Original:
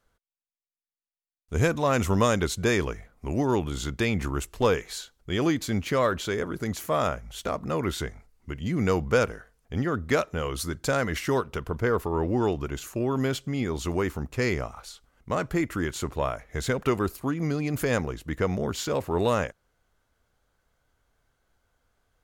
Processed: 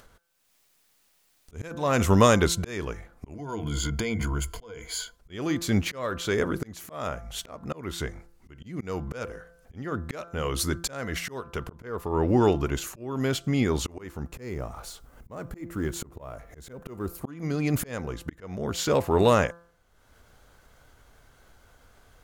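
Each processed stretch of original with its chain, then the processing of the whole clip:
0:03.34–0:05.16: EQ curve with evenly spaced ripples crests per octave 1.8, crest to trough 14 dB + downward compressor 12 to 1, threshold −28 dBFS
0:14.33–0:17.24: mu-law and A-law mismatch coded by mu + parametric band 3,200 Hz −9 dB 2.9 octaves
whole clip: hum removal 170.3 Hz, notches 10; volume swells 504 ms; upward compression, threshold −49 dBFS; level +4.5 dB

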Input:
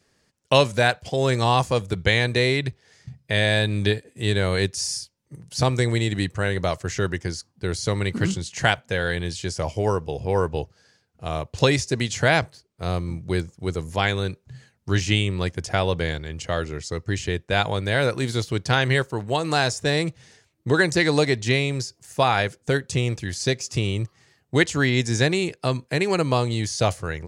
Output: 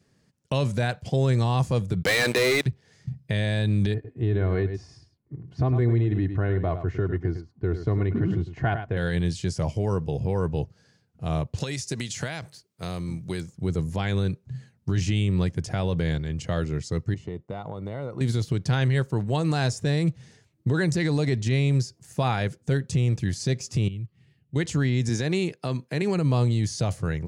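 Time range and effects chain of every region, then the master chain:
0:02.03–0:02.66: high-pass filter 500 Hz + leveller curve on the samples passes 5
0:03.94–0:08.97: low-pass filter 1,500 Hz + comb filter 2.8 ms, depth 55% + single-tap delay 103 ms −12.5 dB
0:11.60–0:13.53: high-pass filter 45 Hz + spectral tilt +2.5 dB per octave + downward compressor, threshold −25 dBFS
0:17.14–0:18.21: Savitzky-Golay smoothing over 65 samples + spectral tilt +3 dB per octave + downward compressor 5 to 1, threshold −29 dBFS
0:23.88–0:24.56: drawn EQ curve 160 Hz 0 dB, 1,100 Hz −15 dB, 2,800 Hz 0 dB, 6,200 Hz −17 dB, 9,900 Hz −8 dB + downward compressor 1.5 to 1, threshold −56 dBFS
0:25.09–0:26.02: high-pass filter 280 Hz 6 dB per octave + parametric band 8,000 Hz −6 dB 0.2 octaves
whole clip: parametric band 150 Hz +12.5 dB 2.1 octaves; brickwall limiter −10.5 dBFS; level −5 dB

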